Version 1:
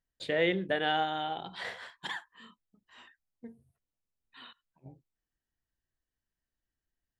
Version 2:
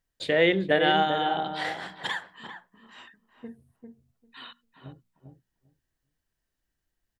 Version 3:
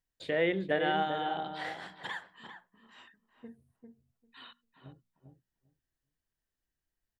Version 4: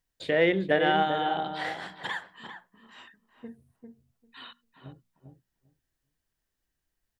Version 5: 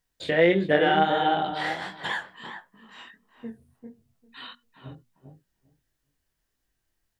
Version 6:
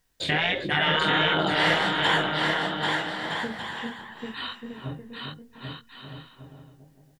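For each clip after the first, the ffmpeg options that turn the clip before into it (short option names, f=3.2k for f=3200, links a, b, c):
-filter_complex "[0:a]bandreject=f=60:t=h:w=6,bandreject=f=120:t=h:w=6,bandreject=f=180:t=h:w=6,bandreject=f=240:t=h:w=6,asplit=2[a][b];[b]adelay=397,lowpass=f=880:p=1,volume=-5dB,asplit=2[c][d];[d]adelay=397,lowpass=f=880:p=1,volume=0.15,asplit=2[e][f];[f]adelay=397,lowpass=f=880:p=1,volume=0.15[g];[a][c][e][g]amix=inputs=4:normalize=0,volume=6.5dB"
-filter_complex "[0:a]acrossover=split=2700[a][b];[b]acompressor=threshold=-39dB:ratio=4:attack=1:release=60[c];[a][c]amix=inputs=2:normalize=0,volume=-7dB"
-af "aeval=exprs='0.168*(cos(1*acos(clip(val(0)/0.168,-1,1)))-cos(1*PI/2))+0.00596*(cos(3*acos(clip(val(0)/0.168,-1,1)))-cos(3*PI/2))':c=same,volume=6.5dB"
-filter_complex "[0:a]asplit=2[a][b];[b]alimiter=limit=-16.5dB:level=0:latency=1:release=91,volume=2dB[c];[a][c]amix=inputs=2:normalize=0,flanger=delay=19:depth=6.6:speed=1.5"
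-filter_complex "[0:a]afftfilt=real='re*lt(hypot(re,im),0.2)':imag='im*lt(hypot(re,im),0.2)':win_size=1024:overlap=0.75,asplit=2[a][b];[b]aecho=0:1:790|1264|1548|1719|1821:0.631|0.398|0.251|0.158|0.1[c];[a][c]amix=inputs=2:normalize=0,volume=7.5dB"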